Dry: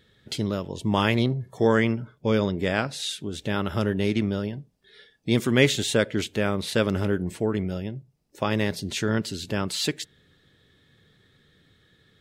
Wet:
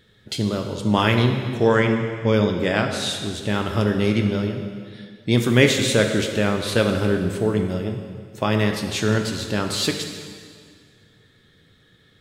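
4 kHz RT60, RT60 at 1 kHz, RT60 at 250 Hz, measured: 1.9 s, 2.0 s, 2.0 s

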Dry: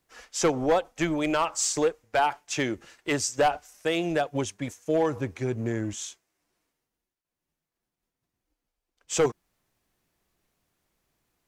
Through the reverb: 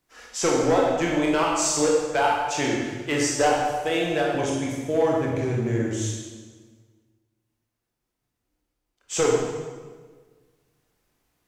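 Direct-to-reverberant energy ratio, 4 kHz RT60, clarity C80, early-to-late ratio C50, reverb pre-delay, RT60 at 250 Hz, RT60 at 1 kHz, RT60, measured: -3.0 dB, 1.2 s, 2.5 dB, 0.0 dB, 20 ms, 1.7 s, 1.4 s, 1.5 s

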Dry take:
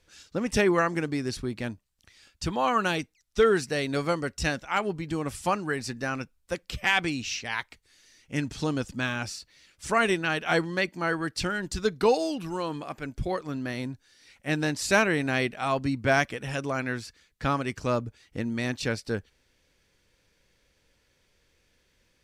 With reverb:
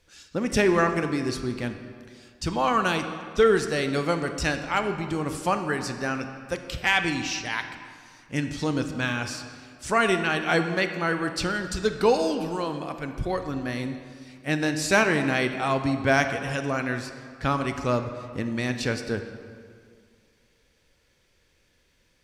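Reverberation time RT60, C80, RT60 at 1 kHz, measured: 2.1 s, 9.5 dB, 2.1 s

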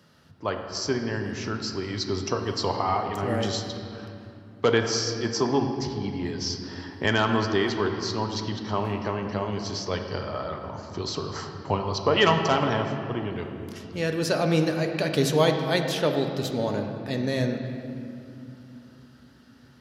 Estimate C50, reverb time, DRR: 5.5 dB, 2.9 s, 4.0 dB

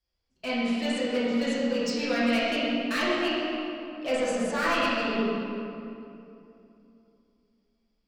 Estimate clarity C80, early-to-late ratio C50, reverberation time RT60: -1.5 dB, -3.5 dB, 2.8 s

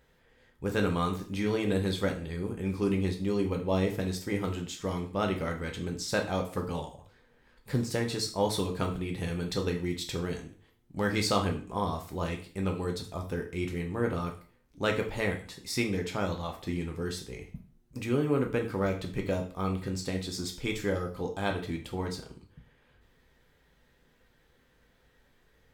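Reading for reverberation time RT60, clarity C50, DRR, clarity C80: 0.40 s, 10.0 dB, 2.5 dB, 14.5 dB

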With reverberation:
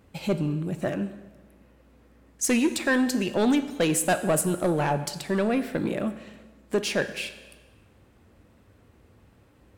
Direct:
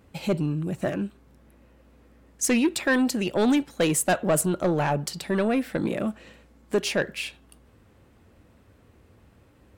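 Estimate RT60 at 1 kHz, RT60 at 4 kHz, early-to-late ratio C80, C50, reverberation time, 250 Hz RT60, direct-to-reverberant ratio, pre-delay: 1.3 s, 1.2 s, 14.0 dB, 13.0 dB, 1.3 s, 1.3 s, 11.0 dB, 6 ms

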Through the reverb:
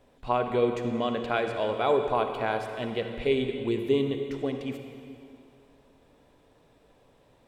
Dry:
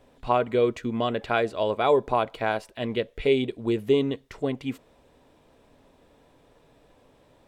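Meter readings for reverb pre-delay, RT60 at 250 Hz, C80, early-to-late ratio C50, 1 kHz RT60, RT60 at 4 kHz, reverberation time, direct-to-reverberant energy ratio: 40 ms, 2.5 s, 6.5 dB, 6.0 dB, 2.5 s, 2.2 s, 2.5 s, 5.5 dB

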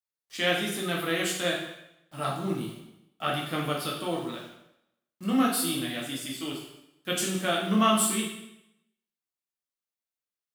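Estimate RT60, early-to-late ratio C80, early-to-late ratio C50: 0.85 s, 7.0 dB, 3.5 dB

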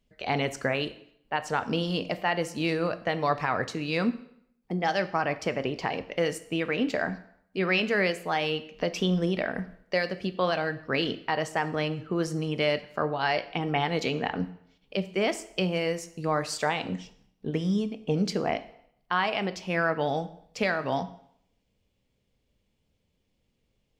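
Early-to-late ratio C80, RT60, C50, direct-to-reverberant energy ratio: 18.0 dB, 0.70 s, 15.5 dB, 11.5 dB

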